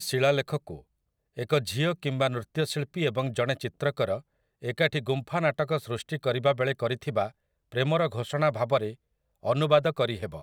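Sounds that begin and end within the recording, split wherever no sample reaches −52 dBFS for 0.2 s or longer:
0:01.37–0:04.22
0:04.62–0:07.31
0:07.72–0:08.95

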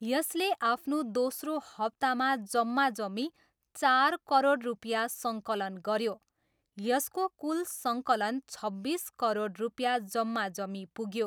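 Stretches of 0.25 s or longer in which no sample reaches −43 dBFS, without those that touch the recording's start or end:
0:03.29–0:03.75
0:06.14–0:06.78

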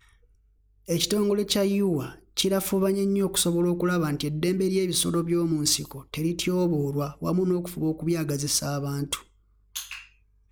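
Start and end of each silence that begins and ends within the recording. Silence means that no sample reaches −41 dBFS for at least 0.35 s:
0:09.22–0:09.76

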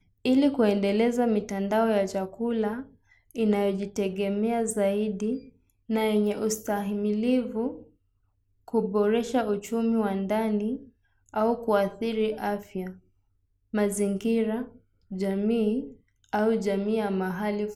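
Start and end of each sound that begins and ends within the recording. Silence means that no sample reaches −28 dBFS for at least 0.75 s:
0:08.74–0:12.87

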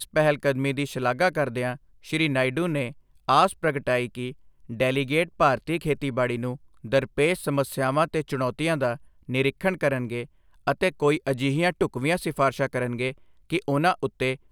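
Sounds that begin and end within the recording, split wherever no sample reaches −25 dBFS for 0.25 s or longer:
0:02.13–0:02.88
0:03.29–0:04.30
0:04.72–0:06.53
0:06.93–0:08.93
0:09.30–0:10.22
0:10.67–0:13.10

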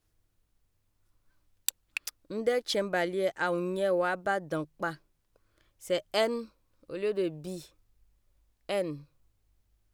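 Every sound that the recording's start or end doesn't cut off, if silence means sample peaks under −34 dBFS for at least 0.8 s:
0:01.68–0:04.93
0:05.90–0:07.58
0:08.69–0:08.95

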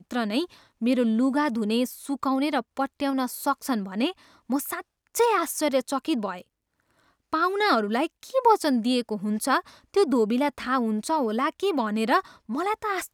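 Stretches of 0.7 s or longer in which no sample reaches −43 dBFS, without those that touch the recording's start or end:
0:06.42–0:07.33

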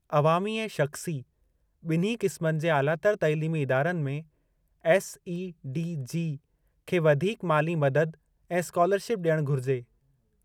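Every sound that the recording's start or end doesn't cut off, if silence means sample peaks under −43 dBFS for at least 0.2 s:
0:01.85–0:04.22
0:04.84–0:06.37
0:06.88–0:08.14
0:08.50–0:09.82

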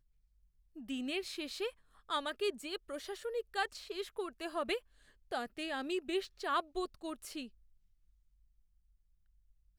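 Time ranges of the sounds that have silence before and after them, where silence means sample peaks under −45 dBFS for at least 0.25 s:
0:00.76–0:01.70
0:02.09–0:04.78
0:05.31–0:07.47

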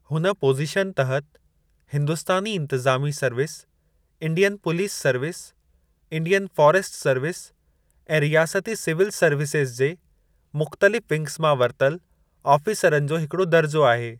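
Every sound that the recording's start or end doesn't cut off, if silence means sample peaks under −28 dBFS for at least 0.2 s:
0:01.93–0:03.54
0:04.22–0:05.39
0:06.12–0:07.40
0:08.10–0:09.93
0:10.55–0:11.96

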